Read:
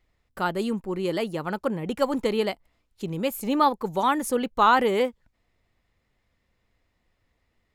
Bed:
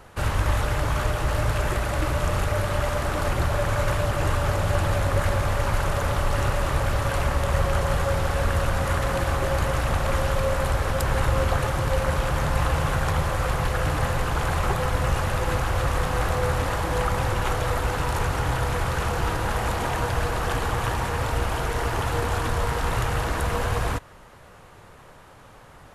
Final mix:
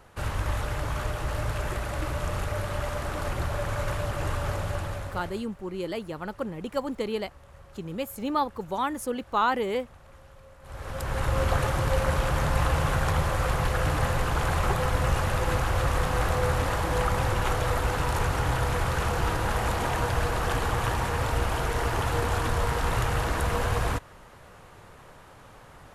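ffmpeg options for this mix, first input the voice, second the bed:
-filter_complex "[0:a]adelay=4750,volume=0.531[s0];[1:a]volume=10.6,afade=t=out:st=4.53:d=0.92:silence=0.0794328,afade=t=in:st=10.62:d=0.93:silence=0.0473151[s1];[s0][s1]amix=inputs=2:normalize=0"

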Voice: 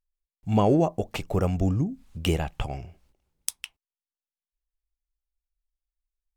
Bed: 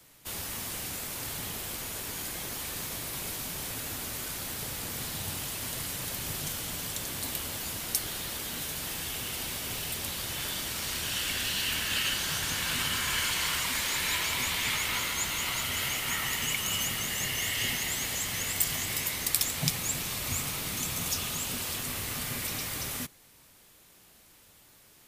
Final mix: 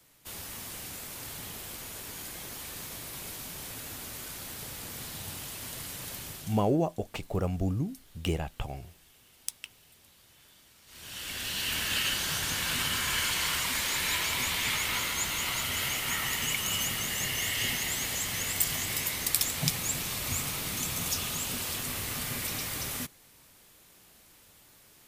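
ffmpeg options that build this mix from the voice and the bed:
-filter_complex "[0:a]adelay=6000,volume=0.531[s0];[1:a]volume=10,afade=t=out:st=6.16:d=0.56:silence=0.1,afade=t=in:st=10.86:d=0.96:silence=0.0595662[s1];[s0][s1]amix=inputs=2:normalize=0"

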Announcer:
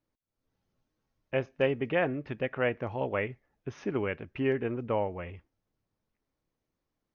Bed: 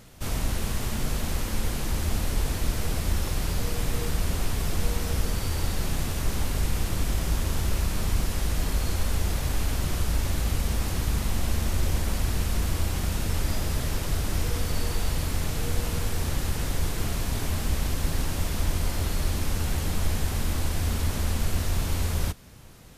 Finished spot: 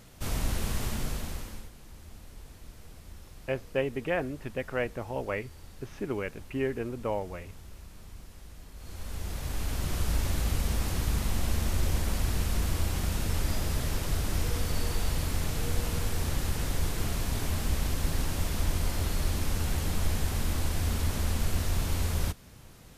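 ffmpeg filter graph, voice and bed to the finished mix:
-filter_complex "[0:a]adelay=2150,volume=0.794[s0];[1:a]volume=6.68,afade=t=out:st=0.84:d=0.86:silence=0.112202,afade=t=in:st=8.75:d=1.36:silence=0.112202[s1];[s0][s1]amix=inputs=2:normalize=0"

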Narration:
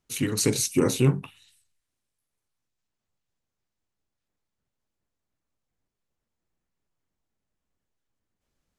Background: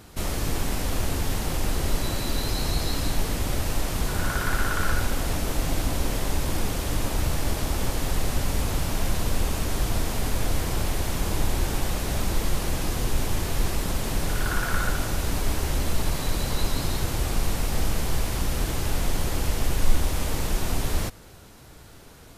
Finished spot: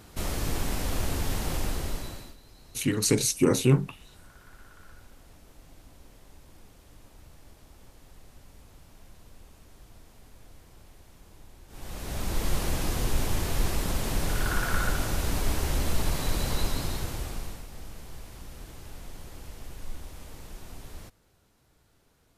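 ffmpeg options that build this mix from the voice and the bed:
-filter_complex "[0:a]adelay=2650,volume=1[s0];[1:a]volume=12.6,afade=t=out:st=1.55:d=0.81:silence=0.0630957,afade=t=in:st=11.68:d=0.87:silence=0.0562341,afade=t=out:st=16.51:d=1.15:silence=0.158489[s1];[s0][s1]amix=inputs=2:normalize=0"

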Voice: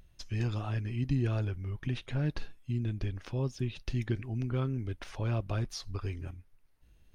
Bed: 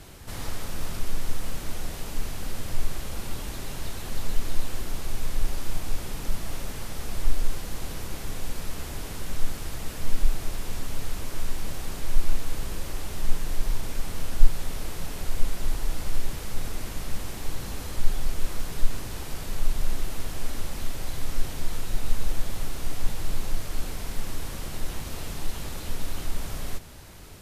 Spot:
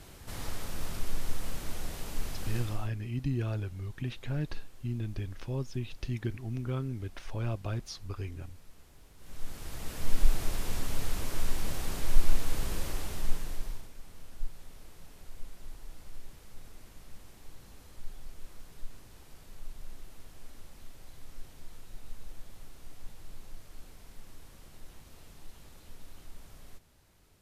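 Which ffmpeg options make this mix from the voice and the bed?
-filter_complex "[0:a]adelay=2150,volume=0.794[s0];[1:a]volume=7.5,afade=t=out:st=2.55:d=0.36:silence=0.11885,afade=t=in:st=9.17:d=1.16:silence=0.0794328,afade=t=out:st=12.82:d=1.08:silence=0.133352[s1];[s0][s1]amix=inputs=2:normalize=0"

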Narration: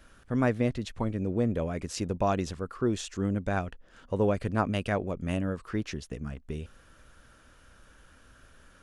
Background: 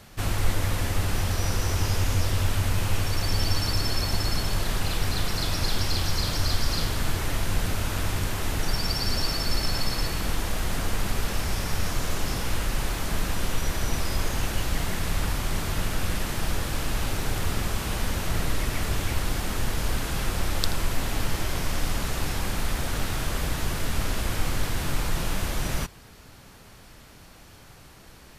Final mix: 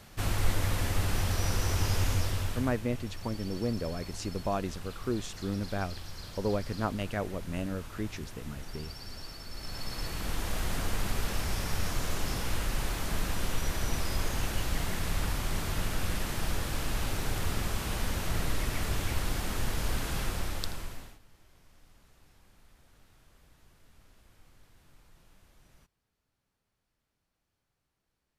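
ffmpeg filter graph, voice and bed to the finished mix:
-filter_complex "[0:a]adelay=2250,volume=0.596[s0];[1:a]volume=2.99,afade=t=out:st=2.06:d=0.76:silence=0.199526,afade=t=in:st=9.52:d=1.05:silence=0.223872,afade=t=out:st=20.17:d=1.02:silence=0.0354813[s1];[s0][s1]amix=inputs=2:normalize=0"

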